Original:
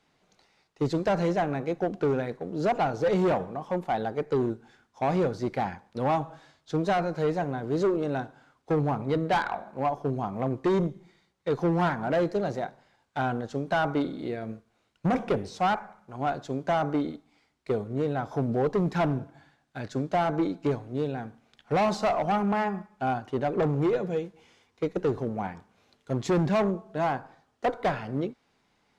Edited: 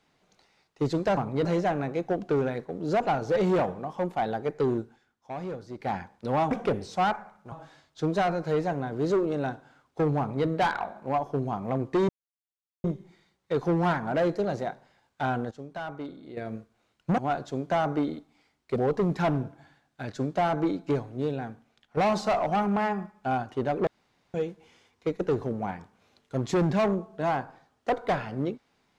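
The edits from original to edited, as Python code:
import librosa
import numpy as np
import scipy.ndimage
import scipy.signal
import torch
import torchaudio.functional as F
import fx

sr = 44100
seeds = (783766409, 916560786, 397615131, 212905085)

y = fx.edit(x, sr, fx.fade_down_up(start_s=4.53, length_s=1.16, db=-10.0, fade_s=0.18, curve='qsin'),
    fx.duplicate(start_s=8.9, length_s=0.28, to_s=1.17),
    fx.insert_silence(at_s=10.8, length_s=0.75),
    fx.clip_gain(start_s=13.47, length_s=0.86, db=-10.5),
    fx.move(start_s=15.14, length_s=1.01, to_s=6.23),
    fx.cut(start_s=17.73, length_s=0.79),
    fx.fade_out_to(start_s=21.2, length_s=0.53, floor_db=-9.5),
    fx.room_tone_fill(start_s=23.63, length_s=0.47), tone=tone)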